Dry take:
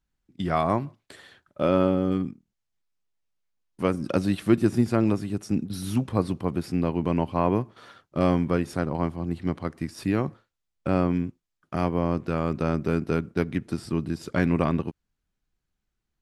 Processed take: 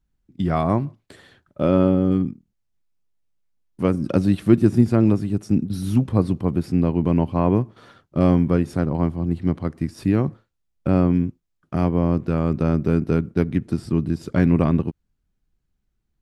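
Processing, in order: bass shelf 420 Hz +10 dB; trim -1.5 dB

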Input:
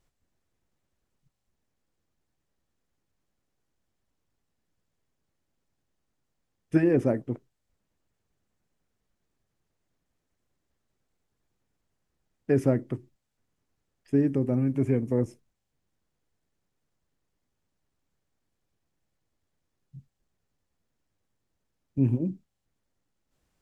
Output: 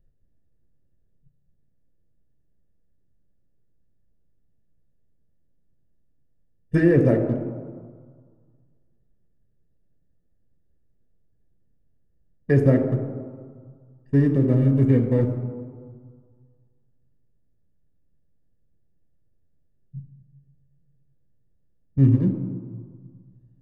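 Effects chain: local Wiener filter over 41 samples; band-stop 2.5 kHz, Q 13; de-hum 52.87 Hz, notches 31; reverberation RT60 1.8 s, pre-delay 3 ms, DRR 6 dB

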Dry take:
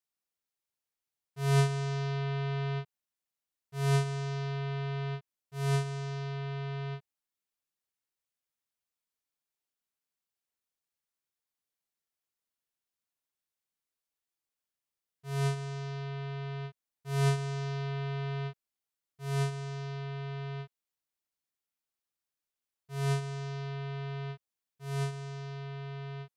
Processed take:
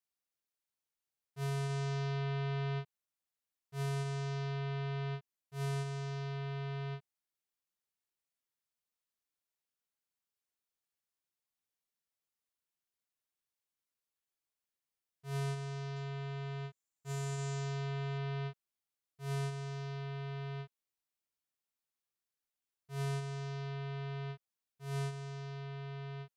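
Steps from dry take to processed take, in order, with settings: 15.96–18.18 s: peaking EQ 7.2 kHz +13.5 dB 0.26 oct; peak limiter -29 dBFS, peak gain reduction 11 dB; trim -3 dB

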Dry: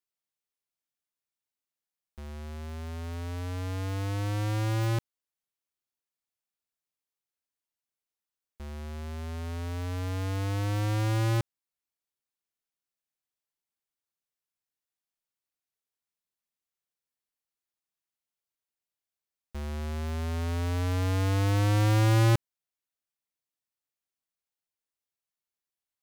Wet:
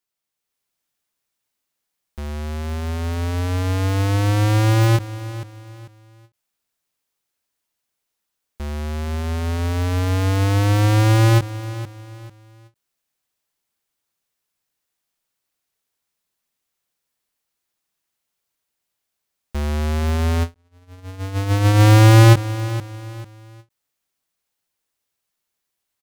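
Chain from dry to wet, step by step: feedback delay 444 ms, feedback 34%, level -15 dB; 20.54–21.81 s: gate -25 dBFS, range -48 dB; level rider gain up to 5.5 dB; endings held to a fixed fall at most 370 dB/s; trim +7 dB

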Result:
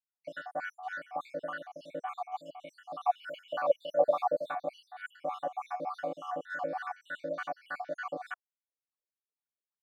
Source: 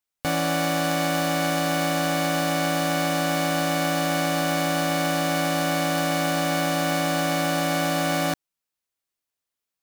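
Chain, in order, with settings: random holes in the spectrogram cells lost 70%; 3.05–4.52 s: FFT filter 300 Hz 0 dB, 620 Hz +13 dB, 1 kHz +8 dB, 2 kHz -9 dB, 2.9 kHz +13 dB, 4.6 kHz -2 dB, 7.7 kHz -2 dB, 14 kHz +7 dB; wah-wah 3.4 Hz 450–1500 Hz, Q 4.8

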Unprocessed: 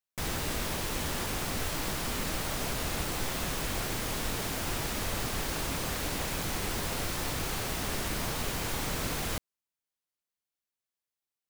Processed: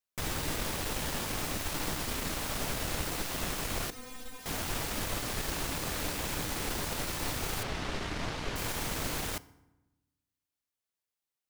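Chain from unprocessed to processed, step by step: one-sided wavefolder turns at -32 dBFS; 3.90–4.46 s: inharmonic resonator 250 Hz, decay 0.21 s, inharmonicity 0.002; 7.63–8.56 s: low-pass 4.5 kHz 12 dB/octave; FDN reverb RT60 1 s, low-frequency decay 1.4×, high-frequency decay 0.65×, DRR 17 dB

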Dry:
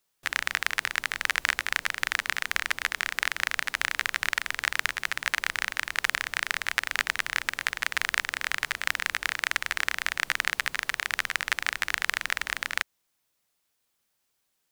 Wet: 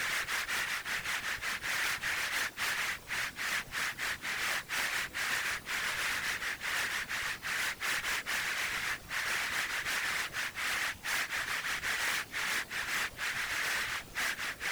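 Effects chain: Paulstretch 4.4×, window 0.05 s, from 4.25 s; overload inside the chain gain 31.5 dB; whisper effect

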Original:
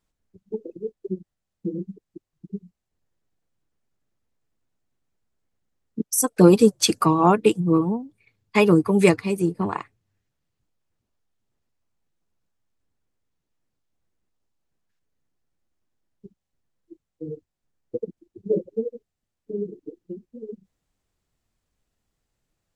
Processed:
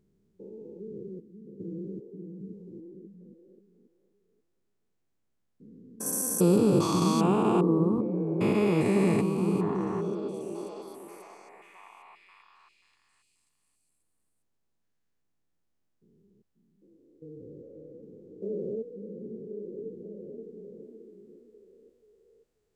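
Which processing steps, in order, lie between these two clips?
spectrogram pixelated in time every 400 ms; 6.06–6.58 s: treble shelf 10 kHz +12 dB; repeats whose band climbs or falls 535 ms, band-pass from 220 Hz, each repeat 0.7 oct, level -3 dB; trim -1.5 dB

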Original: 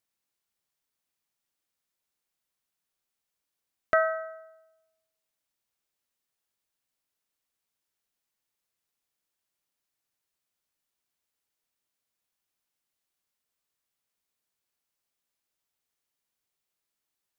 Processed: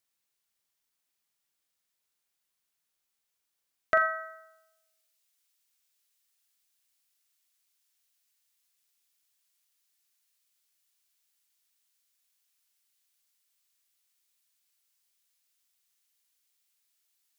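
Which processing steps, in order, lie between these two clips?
tilt shelf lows -3 dB, about 1.3 kHz, from 3.97 s lows -9.5 dB; flutter echo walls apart 7.3 m, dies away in 0.26 s

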